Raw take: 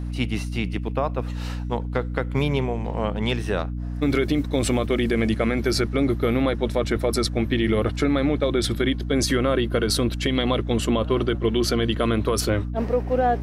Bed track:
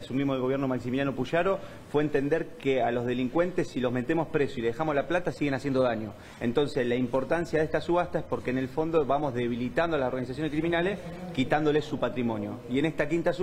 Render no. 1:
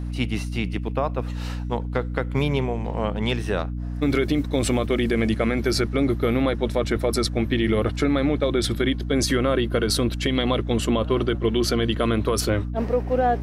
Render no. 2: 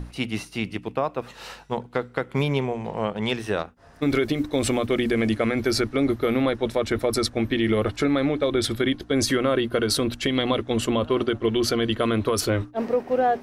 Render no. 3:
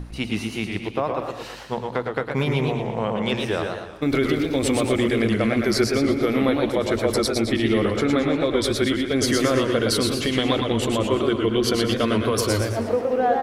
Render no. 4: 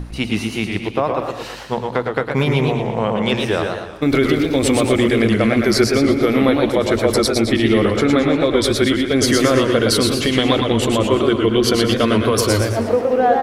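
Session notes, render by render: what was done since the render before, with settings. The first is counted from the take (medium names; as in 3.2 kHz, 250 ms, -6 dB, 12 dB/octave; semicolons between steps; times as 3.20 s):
no audible change
hum notches 60/120/180/240/300 Hz
feedback delay 105 ms, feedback 42%, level -8.5 dB; modulated delay 119 ms, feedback 43%, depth 154 cents, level -5 dB
trim +5.5 dB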